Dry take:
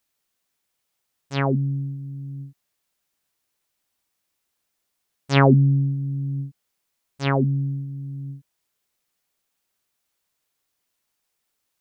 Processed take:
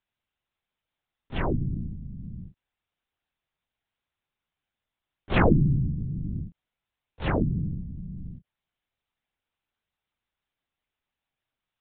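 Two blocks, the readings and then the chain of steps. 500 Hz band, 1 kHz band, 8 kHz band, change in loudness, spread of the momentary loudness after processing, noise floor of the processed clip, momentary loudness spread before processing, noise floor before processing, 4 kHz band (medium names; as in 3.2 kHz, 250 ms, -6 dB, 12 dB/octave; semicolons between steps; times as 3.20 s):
-5.5 dB, -5.5 dB, no reading, -5.0 dB, 19 LU, under -85 dBFS, 19 LU, -77 dBFS, -8.0 dB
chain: LPC vocoder at 8 kHz whisper; trim -4.5 dB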